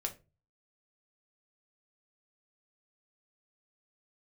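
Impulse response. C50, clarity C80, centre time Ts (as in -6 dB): 14.5 dB, 22.0 dB, 9 ms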